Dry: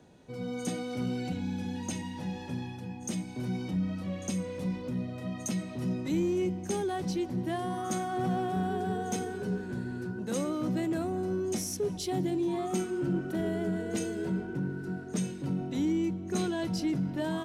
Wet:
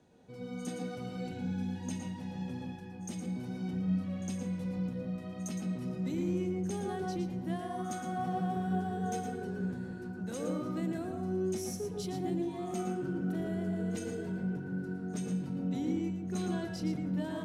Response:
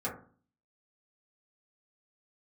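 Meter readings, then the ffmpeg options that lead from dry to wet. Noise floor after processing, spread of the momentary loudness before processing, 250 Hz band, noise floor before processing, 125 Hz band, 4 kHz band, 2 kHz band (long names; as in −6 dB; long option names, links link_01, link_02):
−43 dBFS, 6 LU, −3.0 dB, −41 dBFS, −2.0 dB, −7.0 dB, −5.0 dB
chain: -filter_complex "[0:a]asplit=2[link_01][link_02];[1:a]atrim=start_sample=2205,adelay=112[link_03];[link_02][link_03]afir=irnorm=-1:irlink=0,volume=-6.5dB[link_04];[link_01][link_04]amix=inputs=2:normalize=0,volume=-7.5dB"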